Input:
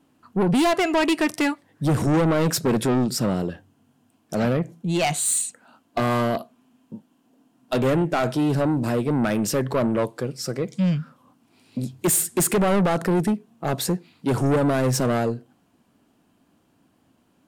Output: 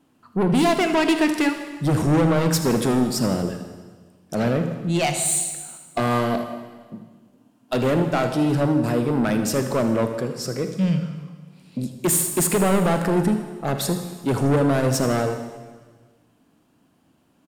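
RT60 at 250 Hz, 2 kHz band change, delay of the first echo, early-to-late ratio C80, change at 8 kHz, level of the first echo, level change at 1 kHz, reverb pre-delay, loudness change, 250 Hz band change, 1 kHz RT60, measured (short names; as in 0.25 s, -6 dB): 1.5 s, +1.0 dB, 79 ms, 9.5 dB, +1.0 dB, -13.5 dB, +1.0 dB, 35 ms, +1.0 dB, +1.5 dB, 1.4 s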